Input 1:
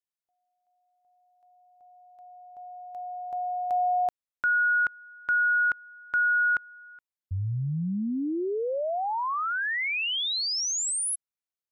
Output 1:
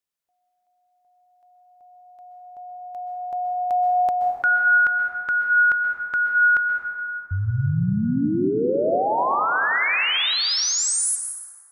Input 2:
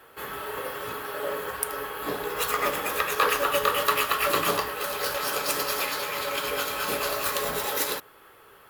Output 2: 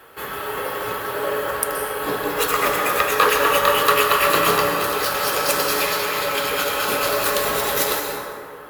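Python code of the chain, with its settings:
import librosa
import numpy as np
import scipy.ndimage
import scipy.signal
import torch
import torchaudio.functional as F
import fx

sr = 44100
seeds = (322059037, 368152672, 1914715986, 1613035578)

y = fx.rev_plate(x, sr, seeds[0], rt60_s=2.6, hf_ratio=0.4, predelay_ms=115, drr_db=2.5)
y = F.gain(torch.from_numpy(y), 5.5).numpy()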